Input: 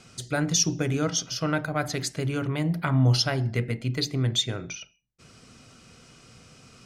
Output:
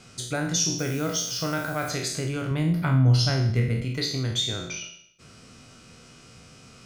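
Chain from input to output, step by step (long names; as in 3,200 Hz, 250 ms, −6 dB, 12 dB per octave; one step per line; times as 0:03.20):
peak hold with a decay on every bin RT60 0.62 s
0:02.51–0:03.85: low-shelf EQ 250 Hz +10 dB
in parallel at +3 dB: downward compressor, threshold −28 dBFS, peak gain reduction 17.5 dB
on the sum: four-comb reverb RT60 0.74 s, combs from 29 ms, DRR 16.5 dB
0:00.78–0:01.89: background noise blue −38 dBFS
level −7.5 dB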